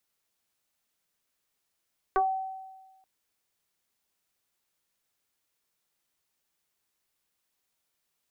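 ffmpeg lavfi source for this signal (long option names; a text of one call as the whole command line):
ffmpeg -f lavfi -i "aevalsrc='0.106*pow(10,-3*t/1.28)*sin(2*PI*763*t+1.9*pow(10,-3*t/0.18)*sin(2*PI*0.49*763*t))':duration=0.88:sample_rate=44100" out.wav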